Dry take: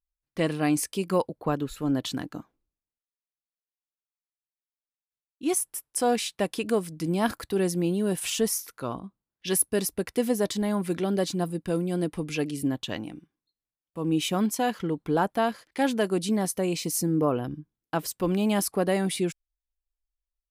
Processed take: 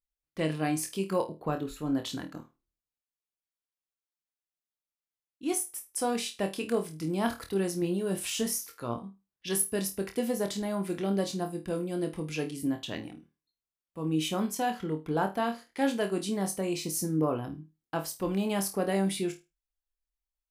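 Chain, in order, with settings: 7.8–8.94 doubler 17 ms -8.5 dB; flutter echo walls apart 4.4 m, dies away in 0.24 s; gain -5 dB

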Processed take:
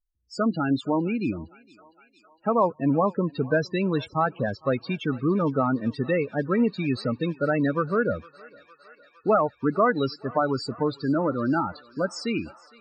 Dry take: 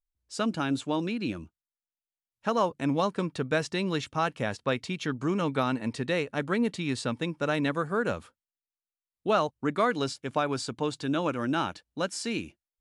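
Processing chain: loudest bins only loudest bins 16; thinning echo 0.459 s, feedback 83%, high-pass 640 Hz, level -21 dB; gain +5 dB

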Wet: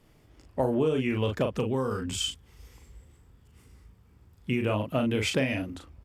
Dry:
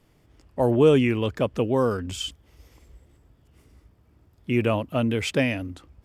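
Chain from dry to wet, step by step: doubler 38 ms -5 dB; compressor 10:1, threshold -22 dBFS, peak gain reduction 12.5 dB; 1.57–4.62 thirty-one-band EQ 315 Hz -7 dB, 630 Hz -10 dB, 8000 Hz +4 dB

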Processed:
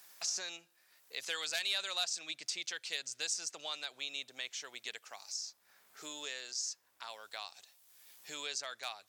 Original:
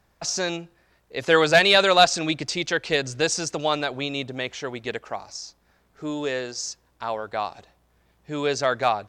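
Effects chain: differentiator; three-band squash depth 70%; gain -5 dB

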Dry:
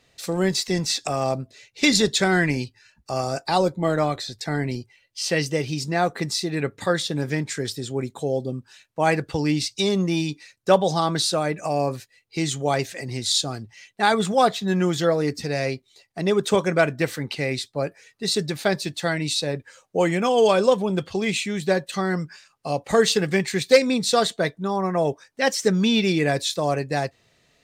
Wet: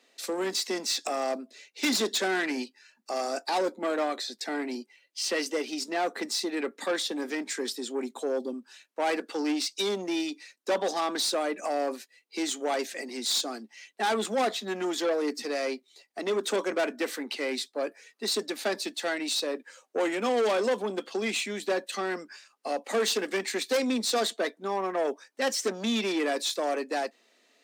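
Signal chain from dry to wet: soft clip -20 dBFS, distortion -9 dB; steep high-pass 220 Hz 72 dB/oct; gain -2 dB

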